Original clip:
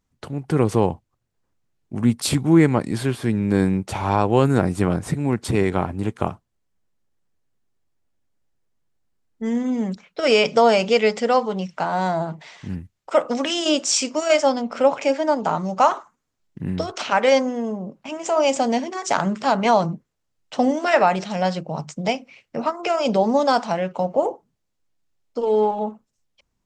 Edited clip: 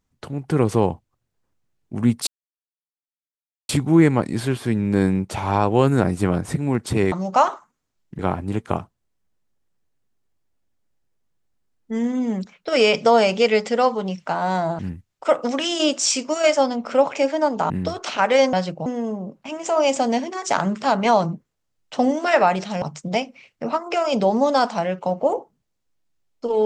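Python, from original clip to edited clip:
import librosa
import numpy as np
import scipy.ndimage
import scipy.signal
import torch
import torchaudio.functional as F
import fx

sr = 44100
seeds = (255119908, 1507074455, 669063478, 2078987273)

y = fx.edit(x, sr, fx.insert_silence(at_s=2.27, length_s=1.42),
    fx.cut(start_s=12.3, length_s=0.35),
    fx.move(start_s=15.56, length_s=1.07, to_s=5.7),
    fx.move(start_s=21.42, length_s=0.33, to_s=17.46), tone=tone)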